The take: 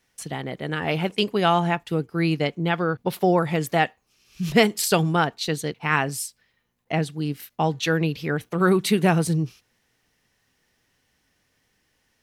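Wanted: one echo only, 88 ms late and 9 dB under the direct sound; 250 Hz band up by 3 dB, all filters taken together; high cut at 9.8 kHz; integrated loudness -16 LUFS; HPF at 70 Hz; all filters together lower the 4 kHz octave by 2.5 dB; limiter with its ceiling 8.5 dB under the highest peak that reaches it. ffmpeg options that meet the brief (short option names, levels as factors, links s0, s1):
-af "highpass=70,lowpass=9800,equalizer=f=250:t=o:g=5,equalizer=f=4000:t=o:g=-3.5,alimiter=limit=0.251:level=0:latency=1,aecho=1:1:88:0.355,volume=2.51"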